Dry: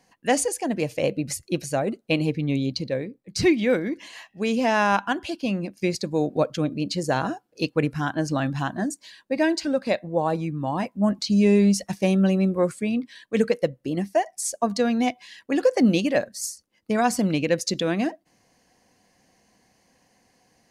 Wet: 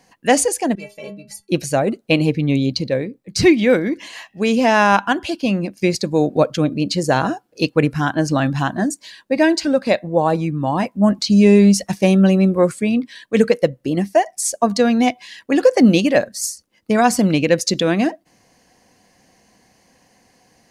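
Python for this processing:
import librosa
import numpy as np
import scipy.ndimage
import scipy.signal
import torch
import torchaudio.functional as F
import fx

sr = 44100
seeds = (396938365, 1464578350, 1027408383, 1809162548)

y = fx.stiff_resonator(x, sr, f0_hz=200.0, decay_s=0.27, stiffness=0.008, at=(0.75, 1.49))
y = F.gain(torch.from_numpy(y), 7.0).numpy()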